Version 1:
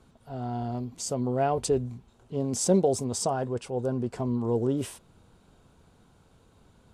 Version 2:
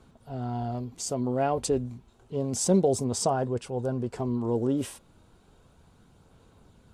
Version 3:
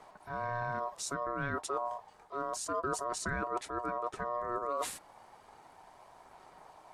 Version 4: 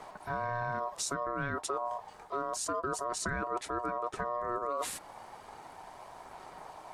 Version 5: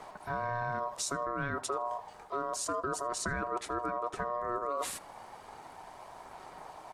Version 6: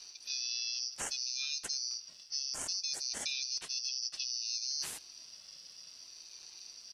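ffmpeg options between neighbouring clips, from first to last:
-af "aphaser=in_gain=1:out_gain=1:delay=3.7:decay=0.23:speed=0.31:type=sinusoidal"
-af "areverse,acompressor=threshold=-34dB:ratio=6,areverse,aeval=exprs='val(0)*sin(2*PI*840*n/s)':c=same,volume=4dB"
-af "acompressor=threshold=-39dB:ratio=4,volume=7.5dB"
-filter_complex "[0:a]asplit=2[a][b];[b]adelay=79,lowpass=f=2.9k:p=1,volume=-19dB,asplit=2[c][d];[d]adelay=79,lowpass=f=2.9k:p=1,volume=0.54,asplit=2[e][f];[f]adelay=79,lowpass=f=2.9k:p=1,volume=0.54,asplit=2[g][h];[h]adelay=79,lowpass=f=2.9k:p=1,volume=0.54[i];[a][c][e][g][i]amix=inputs=5:normalize=0"
-af "afftfilt=real='real(if(lt(b,272),68*(eq(floor(b/68),0)*3+eq(floor(b/68),1)*2+eq(floor(b/68),2)*1+eq(floor(b/68),3)*0)+mod(b,68),b),0)':imag='imag(if(lt(b,272),68*(eq(floor(b/68),0)*3+eq(floor(b/68),1)*2+eq(floor(b/68),2)*1+eq(floor(b/68),3)*0)+mod(b,68),b),0)':win_size=2048:overlap=0.75,aeval=exprs='val(0)*sin(2*PI*470*n/s+470*0.25/0.62*sin(2*PI*0.62*n/s))':c=same"

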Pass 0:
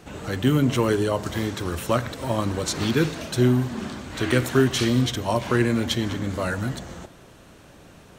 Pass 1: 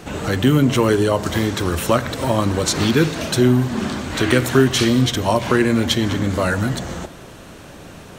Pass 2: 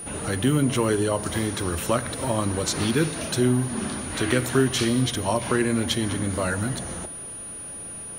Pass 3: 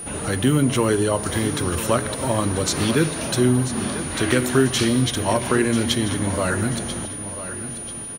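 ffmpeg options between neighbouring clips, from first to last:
-filter_complex "[0:a]asplit=2[a][b];[b]acompressor=threshold=-28dB:ratio=6,volume=2.5dB[c];[a][c]amix=inputs=2:normalize=0,bandreject=f=60:t=h:w=6,bandreject=f=120:t=h:w=6,volume=2.5dB"
-af "aeval=exprs='val(0)+0.0398*sin(2*PI*9600*n/s)':c=same,volume=-6.5dB"
-af "aecho=1:1:989|1978|2967|3956:0.251|0.098|0.0382|0.0149,volume=3dB"

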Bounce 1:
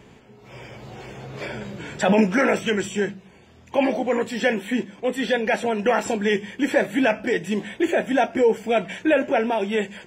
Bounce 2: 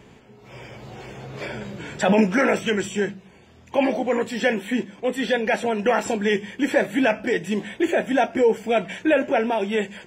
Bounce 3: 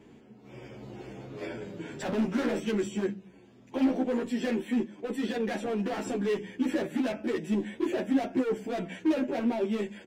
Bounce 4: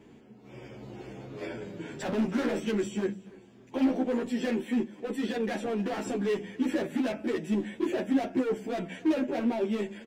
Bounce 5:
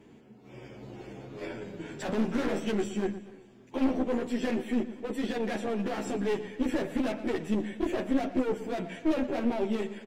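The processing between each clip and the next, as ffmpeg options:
-af anull
-filter_complex "[0:a]asoftclip=type=hard:threshold=-22dB,equalizer=f=290:t=o:w=1.3:g=12,asplit=2[a][b];[b]adelay=10.3,afreqshift=-0.41[c];[a][c]amix=inputs=2:normalize=1,volume=-7.5dB"
-af "aecho=1:1:288|576|864:0.075|0.0277|0.0103"
-filter_complex "[0:a]aeval=exprs='(tanh(11.2*val(0)+0.65)-tanh(0.65))/11.2':c=same,asplit=2[a][b];[b]adelay=118,lowpass=f=5k:p=1,volume=-14dB,asplit=2[c][d];[d]adelay=118,lowpass=f=5k:p=1,volume=0.42,asplit=2[e][f];[f]adelay=118,lowpass=f=5k:p=1,volume=0.42,asplit=2[g][h];[h]adelay=118,lowpass=f=5k:p=1,volume=0.42[i];[a][c][e][g][i]amix=inputs=5:normalize=0,volume=3dB" -ar 44100 -c:a libmp3lame -b:a 112k

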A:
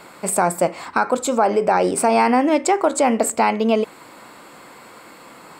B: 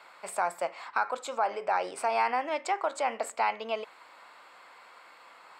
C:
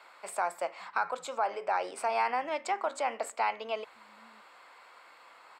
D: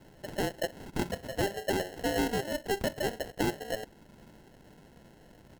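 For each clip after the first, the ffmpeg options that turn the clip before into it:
-filter_complex "[0:a]acrossover=split=590 5100:gain=0.0794 1 0.2[a][b][c];[a][b][c]amix=inputs=3:normalize=0,volume=-8dB"
-filter_complex "[0:a]acrossover=split=170[a][b];[a]adelay=570[c];[c][b]amix=inputs=2:normalize=0,volume=-2dB"
-af "acrusher=samples=37:mix=1:aa=0.000001"

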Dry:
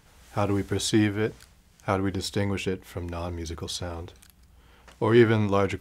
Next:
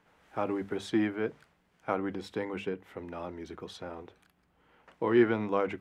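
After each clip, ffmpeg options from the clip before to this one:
-filter_complex "[0:a]acrossover=split=160 2800:gain=0.141 1 0.158[a][b][c];[a][b][c]amix=inputs=3:normalize=0,bandreject=f=50:t=h:w=6,bandreject=f=100:t=h:w=6,bandreject=f=150:t=h:w=6,bandreject=f=200:t=h:w=6,volume=-4.5dB"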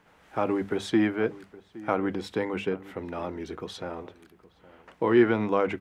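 -filter_complex "[0:a]asplit=2[a][b];[b]alimiter=limit=-20.5dB:level=0:latency=1:release=113,volume=-3dB[c];[a][c]amix=inputs=2:normalize=0,asplit=2[d][e];[e]adelay=816.3,volume=-19dB,highshelf=f=4k:g=-18.4[f];[d][f]amix=inputs=2:normalize=0,volume=1dB"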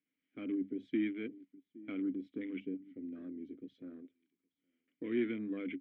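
-filter_complex "[0:a]aeval=exprs='clip(val(0),-1,0.15)':c=same,afwtdn=0.0158,asplit=3[a][b][c];[a]bandpass=f=270:t=q:w=8,volume=0dB[d];[b]bandpass=f=2.29k:t=q:w=8,volume=-6dB[e];[c]bandpass=f=3.01k:t=q:w=8,volume=-9dB[f];[d][e][f]amix=inputs=3:normalize=0"

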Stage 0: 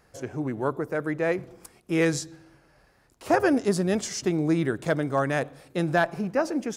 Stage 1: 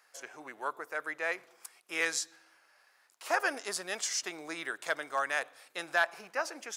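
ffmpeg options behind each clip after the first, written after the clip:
-af "highpass=1.1k"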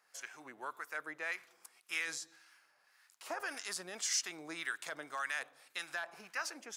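-filter_complex "[0:a]alimiter=level_in=0.5dB:limit=-24dB:level=0:latency=1:release=35,volume=-0.5dB,acrossover=split=950[a][b];[a]aeval=exprs='val(0)*(1-0.7/2+0.7/2*cos(2*PI*1.8*n/s))':c=same[c];[b]aeval=exprs='val(0)*(1-0.7/2-0.7/2*cos(2*PI*1.8*n/s))':c=same[d];[c][d]amix=inputs=2:normalize=0,equalizer=f=530:w=0.76:g=-7,volume=2dB"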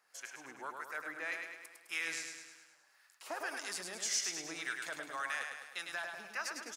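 -af "aecho=1:1:104|208|312|416|520|624|728:0.562|0.309|0.17|0.0936|0.0515|0.0283|0.0156,volume=-1dB"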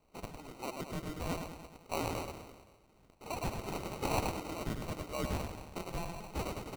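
-af "acrusher=samples=26:mix=1:aa=0.000001,volume=3dB"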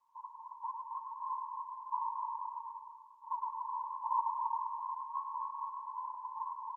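-filter_complex "[0:a]asuperpass=centerf=990:order=12:qfactor=4.7,asplit=2[a][b];[b]aecho=0:1:270|472.5|624.4|738.3|823.7:0.631|0.398|0.251|0.158|0.1[c];[a][c]amix=inputs=2:normalize=0,volume=9.5dB" -ar 48000 -c:a libopus -b:a 32k

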